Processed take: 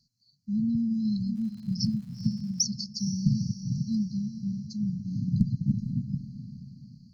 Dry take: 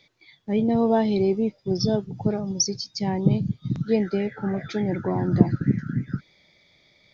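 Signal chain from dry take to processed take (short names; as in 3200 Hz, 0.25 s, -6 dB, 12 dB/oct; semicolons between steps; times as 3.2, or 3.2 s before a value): one-sided clip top -13.5 dBFS; brick-wall FIR band-stop 260–4000 Hz; diffused feedback echo 0.46 s, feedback 43%, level -11.5 dB; 1.35–2.64 crackle 160/s -43 dBFS; gain -3.5 dB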